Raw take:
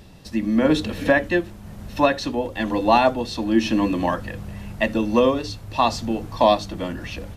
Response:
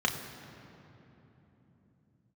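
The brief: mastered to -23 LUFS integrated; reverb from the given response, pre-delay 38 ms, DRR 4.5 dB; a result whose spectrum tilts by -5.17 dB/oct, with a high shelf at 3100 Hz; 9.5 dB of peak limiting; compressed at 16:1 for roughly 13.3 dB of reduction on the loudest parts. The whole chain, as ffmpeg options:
-filter_complex "[0:a]highshelf=f=3.1k:g=-4.5,acompressor=threshold=-25dB:ratio=16,alimiter=limit=-23.5dB:level=0:latency=1,asplit=2[a][b];[1:a]atrim=start_sample=2205,adelay=38[c];[b][c]afir=irnorm=-1:irlink=0,volume=-14.5dB[d];[a][d]amix=inputs=2:normalize=0,volume=9.5dB"

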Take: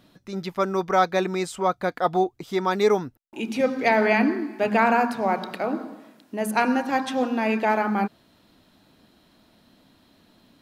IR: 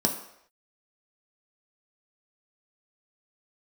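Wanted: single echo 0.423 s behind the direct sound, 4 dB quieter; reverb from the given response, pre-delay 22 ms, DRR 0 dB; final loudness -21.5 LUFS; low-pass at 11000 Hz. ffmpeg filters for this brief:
-filter_complex "[0:a]lowpass=11k,aecho=1:1:423:0.631,asplit=2[a][b];[1:a]atrim=start_sample=2205,adelay=22[c];[b][c]afir=irnorm=-1:irlink=0,volume=-9.5dB[d];[a][d]amix=inputs=2:normalize=0,volume=-5dB"

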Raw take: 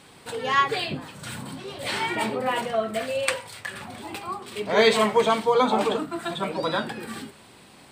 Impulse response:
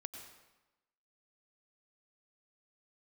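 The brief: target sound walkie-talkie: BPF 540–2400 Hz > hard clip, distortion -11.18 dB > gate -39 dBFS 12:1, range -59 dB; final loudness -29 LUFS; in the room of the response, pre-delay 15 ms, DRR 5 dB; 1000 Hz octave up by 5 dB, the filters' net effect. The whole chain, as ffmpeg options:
-filter_complex "[0:a]equalizer=f=1k:t=o:g=6.5,asplit=2[a][b];[1:a]atrim=start_sample=2205,adelay=15[c];[b][c]afir=irnorm=-1:irlink=0,volume=-2dB[d];[a][d]amix=inputs=2:normalize=0,highpass=540,lowpass=2.4k,asoftclip=type=hard:threshold=-15.5dB,agate=range=-59dB:threshold=-39dB:ratio=12,volume=-5dB"

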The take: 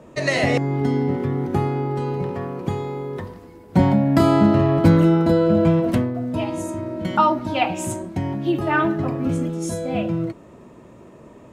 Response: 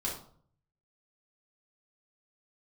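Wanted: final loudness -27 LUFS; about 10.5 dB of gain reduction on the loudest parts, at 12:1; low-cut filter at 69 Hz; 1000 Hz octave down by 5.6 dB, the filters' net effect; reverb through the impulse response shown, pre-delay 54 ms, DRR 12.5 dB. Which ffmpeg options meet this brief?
-filter_complex "[0:a]highpass=69,equalizer=f=1k:t=o:g=-7.5,acompressor=threshold=-21dB:ratio=12,asplit=2[a][b];[1:a]atrim=start_sample=2205,adelay=54[c];[b][c]afir=irnorm=-1:irlink=0,volume=-16dB[d];[a][d]amix=inputs=2:normalize=0,volume=-1dB"

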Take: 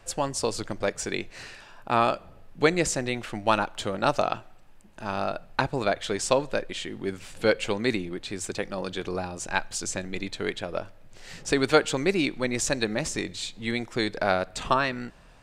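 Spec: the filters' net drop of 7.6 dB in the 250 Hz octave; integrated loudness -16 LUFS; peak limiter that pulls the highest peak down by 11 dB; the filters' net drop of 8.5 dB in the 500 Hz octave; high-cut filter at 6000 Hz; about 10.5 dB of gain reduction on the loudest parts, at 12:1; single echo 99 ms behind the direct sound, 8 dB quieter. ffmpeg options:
-af "lowpass=6k,equalizer=f=250:t=o:g=-7,equalizer=f=500:t=o:g=-9,acompressor=threshold=-30dB:ratio=12,alimiter=limit=-24dB:level=0:latency=1,aecho=1:1:99:0.398,volume=21.5dB"

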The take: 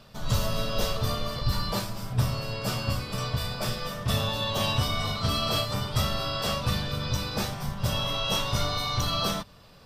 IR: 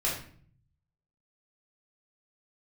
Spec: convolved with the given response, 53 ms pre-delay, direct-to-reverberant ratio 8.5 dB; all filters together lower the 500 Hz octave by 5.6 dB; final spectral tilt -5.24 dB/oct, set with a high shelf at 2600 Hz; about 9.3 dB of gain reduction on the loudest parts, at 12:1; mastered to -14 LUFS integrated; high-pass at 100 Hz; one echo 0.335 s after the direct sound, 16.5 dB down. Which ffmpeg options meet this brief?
-filter_complex "[0:a]highpass=100,equalizer=f=500:t=o:g=-6.5,highshelf=f=2.6k:g=-8,acompressor=threshold=-32dB:ratio=12,aecho=1:1:335:0.15,asplit=2[a][b];[1:a]atrim=start_sample=2205,adelay=53[c];[b][c]afir=irnorm=-1:irlink=0,volume=-16.5dB[d];[a][d]amix=inputs=2:normalize=0,volume=21.5dB"

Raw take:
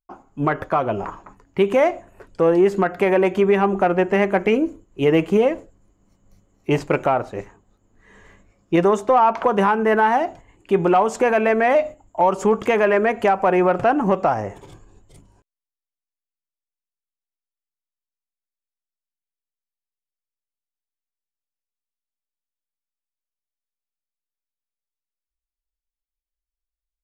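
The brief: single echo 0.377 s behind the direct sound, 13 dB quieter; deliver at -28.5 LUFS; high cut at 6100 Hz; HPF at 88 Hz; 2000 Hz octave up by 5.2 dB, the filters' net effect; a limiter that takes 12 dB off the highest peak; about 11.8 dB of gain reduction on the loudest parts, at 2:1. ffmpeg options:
-af "highpass=88,lowpass=6.1k,equalizer=f=2k:t=o:g=6.5,acompressor=threshold=-34dB:ratio=2,alimiter=level_in=2dB:limit=-24dB:level=0:latency=1,volume=-2dB,aecho=1:1:377:0.224,volume=7dB"

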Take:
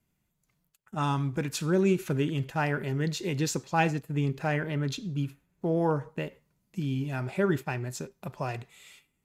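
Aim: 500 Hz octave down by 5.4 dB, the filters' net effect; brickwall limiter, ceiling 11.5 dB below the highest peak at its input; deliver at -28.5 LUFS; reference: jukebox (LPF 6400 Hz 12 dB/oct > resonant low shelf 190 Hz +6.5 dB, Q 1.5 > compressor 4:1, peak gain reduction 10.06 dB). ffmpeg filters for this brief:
-af "equalizer=f=500:t=o:g=-6,alimiter=level_in=0.5dB:limit=-24dB:level=0:latency=1,volume=-0.5dB,lowpass=6.4k,lowshelf=f=190:t=q:w=1.5:g=6.5,acompressor=threshold=-33dB:ratio=4,volume=8dB"

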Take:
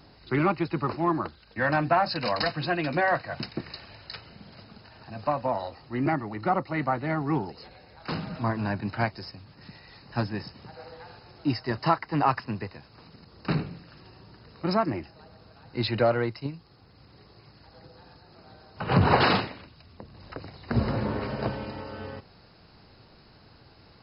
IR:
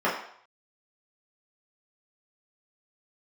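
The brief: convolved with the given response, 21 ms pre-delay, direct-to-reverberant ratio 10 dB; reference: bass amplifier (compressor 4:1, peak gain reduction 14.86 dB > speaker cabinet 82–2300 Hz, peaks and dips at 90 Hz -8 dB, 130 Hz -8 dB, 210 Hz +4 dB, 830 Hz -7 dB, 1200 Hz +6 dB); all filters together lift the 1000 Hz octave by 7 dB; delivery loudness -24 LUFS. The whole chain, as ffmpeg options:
-filter_complex "[0:a]equalizer=f=1k:t=o:g=9,asplit=2[a][b];[1:a]atrim=start_sample=2205,adelay=21[c];[b][c]afir=irnorm=-1:irlink=0,volume=-25.5dB[d];[a][d]amix=inputs=2:normalize=0,acompressor=threshold=-27dB:ratio=4,highpass=f=82:w=0.5412,highpass=f=82:w=1.3066,equalizer=f=90:t=q:w=4:g=-8,equalizer=f=130:t=q:w=4:g=-8,equalizer=f=210:t=q:w=4:g=4,equalizer=f=830:t=q:w=4:g=-7,equalizer=f=1.2k:t=q:w=4:g=6,lowpass=f=2.3k:w=0.5412,lowpass=f=2.3k:w=1.3066,volume=8.5dB"

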